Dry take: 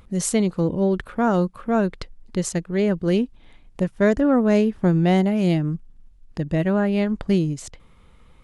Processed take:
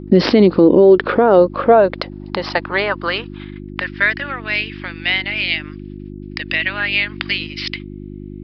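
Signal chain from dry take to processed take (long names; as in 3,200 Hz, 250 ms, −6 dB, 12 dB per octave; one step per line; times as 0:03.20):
stylus tracing distortion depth 0.021 ms
noise gate −43 dBFS, range −32 dB
0:01.07–0:02.43: low-shelf EQ 240 Hz +9.5 dB
downward compressor 6 to 1, threshold −24 dBFS, peak gain reduction 12 dB
high-pass filter sweep 290 Hz → 2,300 Hz, 0:00.48–0:04.34
hum with harmonics 50 Hz, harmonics 7, −52 dBFS 0 dB per octave
downsampling to 11,025 Hz
boost into a limiter +21 dB
0:06.50–0:07.47: multiband upward and downward compressor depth 70%
level −1 dB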